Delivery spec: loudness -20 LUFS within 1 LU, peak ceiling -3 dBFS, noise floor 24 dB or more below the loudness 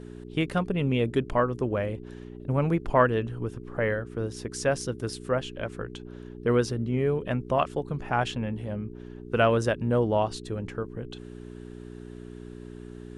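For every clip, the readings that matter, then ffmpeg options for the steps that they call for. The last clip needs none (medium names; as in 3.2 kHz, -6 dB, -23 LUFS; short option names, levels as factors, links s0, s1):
hum 60 Hz; highest harmonic 420 Hz; hum level -40 dBFS; loudness -28.0 LUFS; peak level -8.0 dBFS; loudness target -20.0 LUFS
-> -af "bandreject=f=60:t=h:w=4,bandreject=f=120:t=h:w=4,bandreject=f=180:t=h:w=4,bandreject=f=240:t=h:w=4,bandreject=f=300:t=h:w=4,bandreject=f=360:t=h:w=4,bandreject=f=420:t=h:w=4"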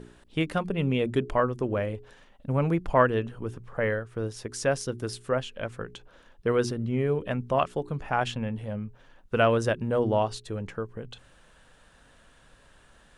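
hum not found; loudness -28.5 LUFS; peak level -7.5 dBFS; loudness target -20.0 LUFS
-> -af "volume=2.66,alimiter=limit=0.708:level=0:latency=1"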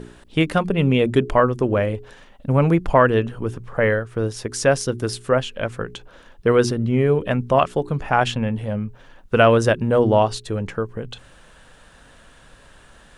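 loudness -20.0 LUFS; peak level -3.0 dBFS; noise floor -49 dBFS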